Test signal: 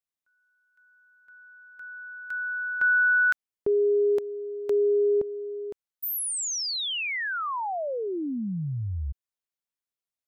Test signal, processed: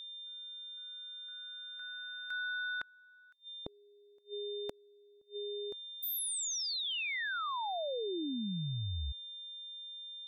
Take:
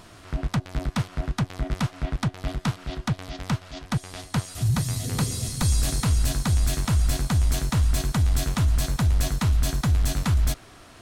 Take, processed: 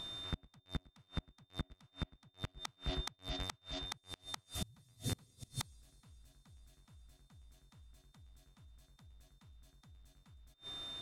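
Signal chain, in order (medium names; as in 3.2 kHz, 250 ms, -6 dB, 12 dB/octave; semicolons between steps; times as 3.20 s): whistle 3.6 kHz -37 dBFS; inverted gate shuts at -18 dBFS, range -33 dB; trim -7 dB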